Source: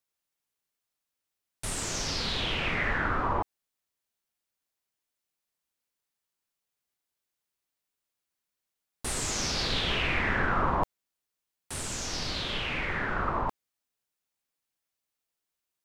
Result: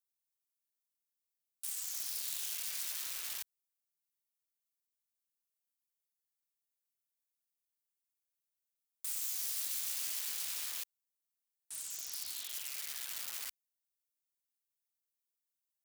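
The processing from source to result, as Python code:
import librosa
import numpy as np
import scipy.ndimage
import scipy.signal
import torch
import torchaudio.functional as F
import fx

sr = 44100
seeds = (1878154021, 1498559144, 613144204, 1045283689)

y = (np.mod(10.0 ** (26.0 / 20.0) * x + 1.0, 2.0) - 1.0) / 10.0 ** (26.0 / 20.0)
y = scipy.signal.sosfilt(scipy.signal.butter(2, 44.0, 'highpass', fs=sr, output='sos'), y)
y = F.preemphasis(torch.from_numpy(y), 0.97).numpy()
y = y * librosa.db_to_amplitude(-6.5)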